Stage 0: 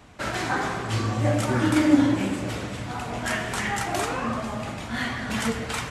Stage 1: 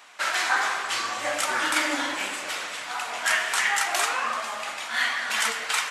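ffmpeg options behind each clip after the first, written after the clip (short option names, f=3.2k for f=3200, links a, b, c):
-af "highpass=1.1k,volume=6.5dB"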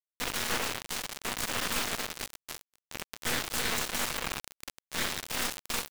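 -af "acrusher=bits=3:mix=0:aa=0.000001,aeval=exprs='val(0)*sin(2*PI*120*n/s)':c=same,aeval=exprs='0.299*(cos(1*acos(clip(val(0)/0.299,-1,1)))-cos(1*PI/2))+0.119*(cos(7*acos(clip(val(0)/0.299,-1,1)))-cos(7*PI/2))+0.0841*(cos(8*acos(clip(val(0)/0.299,-1,1)))-cos(8*PI/2))':c=same,volume=-9dB"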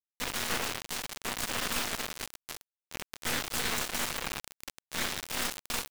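-af "acrusher=bits=4:mix=0:aa=0.000001,volume=-2dB"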